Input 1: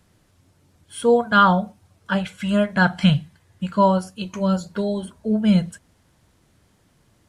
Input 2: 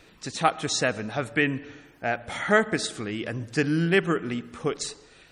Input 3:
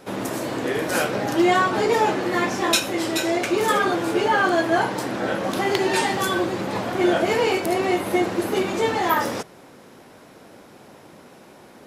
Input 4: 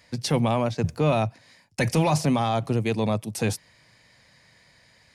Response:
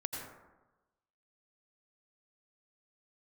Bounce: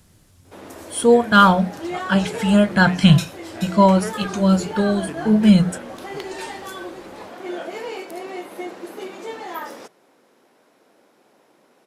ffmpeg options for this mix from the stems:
-filter_complex "[0:a]highshelf=frequency=4200:gain=9.5,volume=1dB[link_01];[1:a]adelay=1500,volume=-14.5dB[link_02];[2:a]highpass=330,adelay=450,volume=-11dB[link_03];[link_01][link_02][link_03]amix=inputs=3:normalize=0,lowshelf=frequency=280:gain=6.5,bandreject=frequency=60:width_type=h:width=6,bandreject=frequency=120:width_type=h:width=6,bandreject=frequency=180:width_type=h:width=6"

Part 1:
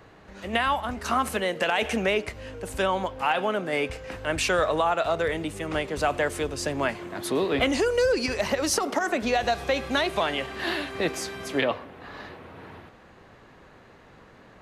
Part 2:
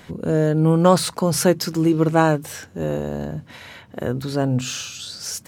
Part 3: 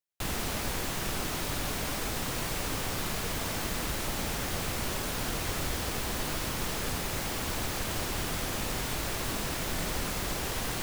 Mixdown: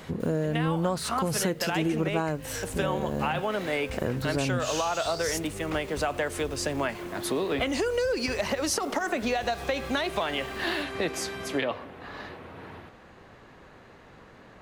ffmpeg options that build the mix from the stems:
ffmpeg -i stem1.wav -i stem2.wav -i stem3.wav -filter_complex "[0:a]volume=0.5dB[link_01];[1:a]volume=-0.5dB[link_02];[2:a]asoftclip=type=hard:threshold=-34.5dB,volume=-14.5dB[link_03];[link_01][link_02][link_03]amix=inputs=3:normalize=0,acompressor=threshold=-24dB:ratio=6" out.wav

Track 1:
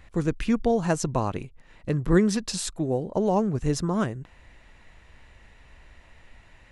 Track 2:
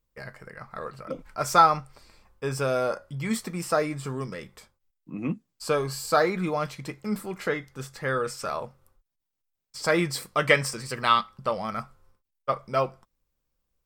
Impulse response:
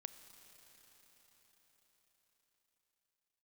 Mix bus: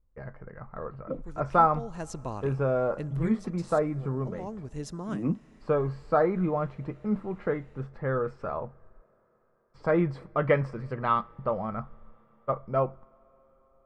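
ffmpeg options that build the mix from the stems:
-filter_complex "[0:a]adelay=1100,volume=-2dB,afade=type=in:start_time=1.71:duration=0.59:silence=0.334965,afade=type=out:start_time=3.1:duration=0.27:silence=0.266073,afade=type=in:start_time=4.17:duration=0.68:silence=0.316228,asplit=2[link_01][link_02];[link_02]volume=-5dB[link_03];[1:a]lowpass=1100,lowshelf=frequency=87:gain=11.5,volume=-1.5dB,asplit=2[link_04][link_05];[link_05]volume=-12.5dB[link_06];[2:a]atrim=start_sample=2205[link_07];[link_03][link_06]amix=inputs=2:normalize=0[link_08];[link_08][link_07]afir=irnorm=-1:irlink=0[link_09];[link_01][link_04][link_09]amix=inputs=3:normalize=0"

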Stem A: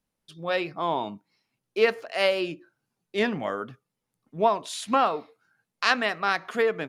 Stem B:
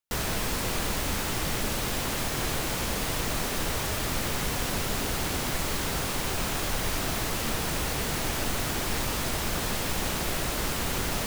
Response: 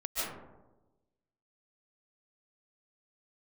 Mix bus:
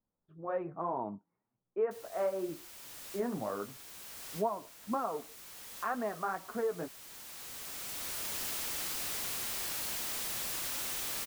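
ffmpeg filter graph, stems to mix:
-filter_complex "[0:a]lowpass=frequency=1300:width=0.5412,lowpass=frequency=1300:width=1.3066,acompressor=threshold=-25dB:ratio=4,flanger=delay=8:depth=4.5:regen=-30:speed=2:shape=triangular,volume=-1.5dB,asplit=2[link_01][link_02];[1:a]bass=frequency=250:gain=-1,treble=frequency=4000:gain=6,aeval=exprs='(mod(22.4*val(0)+1,2)-1)/22.4':channel_layout=same,adelay=1800,volume=-5.5dB[link_03];[link_02]apad=whole_len=576002[link_04];[link_03][link_04]sidechaincompress=threshold=-47dB:ratio=6:attack=9.9:release=1300[link_05];[link_01][link_05]amix=inputs=2:normalize=0"

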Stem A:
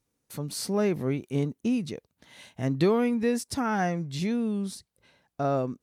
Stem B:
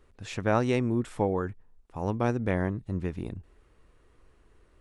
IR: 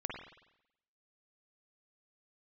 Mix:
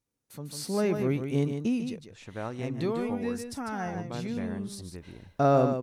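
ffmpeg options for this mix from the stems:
-filter_complex "[0:a]volume=4.5dB,afade=type=out:start_time=1.54:duration=0.46:silence=0.398107,afade=type=in:start_time=4.67:duration=0.23:silence=0.251189,asplit=2[link_01][link_02];[link_02]volume=-7.5dB[link_03];[1:a]adelay=1900,volume=-20dB,asplit=2[link_04][link_05];[link_05]volume=-18.5dB[link_06];[2:a]atrim=start_sample=2205[link_07];[link_06][link_07]afir=irnorm=-1:irlink=0[link_08];[link_03]aecho=0:1:149:1[link_09];[link_01][link_04][link_08][link_09]amix=inputs=4:normalize=0,dynaudnorm=framelen=210:gausssize=7:maxgain=8dB"

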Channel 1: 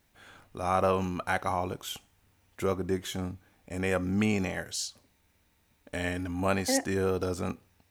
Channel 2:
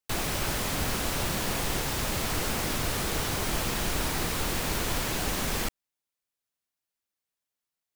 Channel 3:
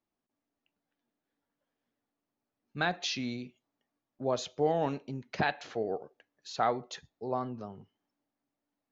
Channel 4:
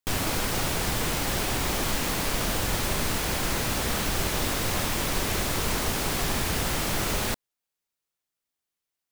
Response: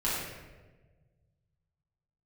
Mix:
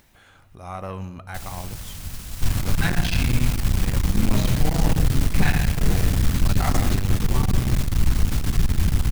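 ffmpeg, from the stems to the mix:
-filter_complex "[0:a]acompressor=mode=upward:threshold=-37dB:ratio=2.5,volume=-4.5dB,asplit=2[link_01][link_02];[link_02]volume=-23dB[link_03];[1:a]highshelf=frequency=3400:gain=10,adelay=1250,volume=-12dB[link_04];[2:a]equalizer=frequency=2300:width=1.5:gain=10,volume=-1dB,asplit=2[link_05][link_06];[link_06]volume=-4.5dB[link_07];[3:a]adelay=2350,volume=-1.5dB[link_08];[4:a]atrim=start_sample=2205[link_09];[link_03][link_07]amix=inputs=2:normalize=0[link_10];[link_10][link_09]afir=irnorm=-1:irlink=0[link_11];[link_01][link_04][link_05][link_08][link_11]amix=inputs=5:normalize=0,asubboost=boost=10.5:cutoff=150,aeval=exprs='(tanh(4.47*val(0)+0.6)-tanh(0.6))/4.47':channel_layout=same"

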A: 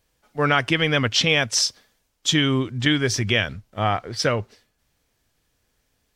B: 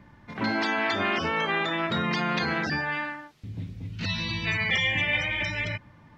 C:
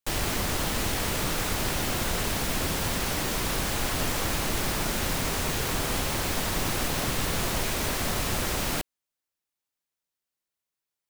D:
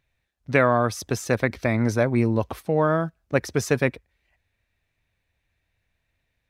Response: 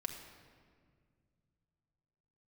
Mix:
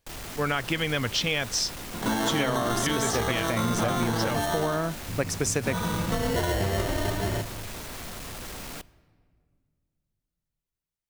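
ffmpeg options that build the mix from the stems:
-filter_complex "[0:a]volume=-5dB[link_01];[1:a]acrusher=samples=18:mix=1:aa=0.000001,adelay=1650,volume=1dB,asplit=2[link_02][link_03];[link_03]volume=-10dB[link_04];[2:a]asoftclip=type=hard:threshold=-29.5dB,volume=-8dB,asplit=2[link_05][link_06];[link_06]volume=-12dB[link_07];[3:a]equalizer=frequency=8000:width=1:gain=14.5,adelay=1850,volume=-2.5dB[link_08];[4:a]atrim=start_sample=2205[link_09];[link_04][link_07]amix=inputs=2:normalize=0[link_10];[link_10][link_09]afir=irnorm=-1:irlink=0[link_11];[link_01][link_02][link_05][link_08][link_11]amix=inputs=5:normalize=0,acompressor=threshold=-22dB:ratio=6"

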